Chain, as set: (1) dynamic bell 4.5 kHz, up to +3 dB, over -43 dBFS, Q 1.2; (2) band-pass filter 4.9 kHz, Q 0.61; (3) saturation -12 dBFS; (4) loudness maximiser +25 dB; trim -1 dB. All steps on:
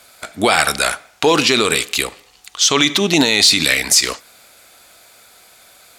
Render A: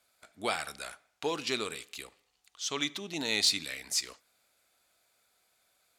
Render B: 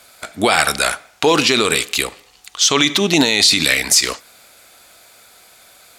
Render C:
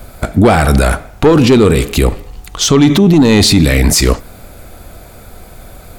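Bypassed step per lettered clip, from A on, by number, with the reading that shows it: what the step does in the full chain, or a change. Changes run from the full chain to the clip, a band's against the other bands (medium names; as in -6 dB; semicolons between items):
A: 4, crest factor change +6.5 dB; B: 3, distortion -24 dB; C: 2, 125 Hz band +18.0 dB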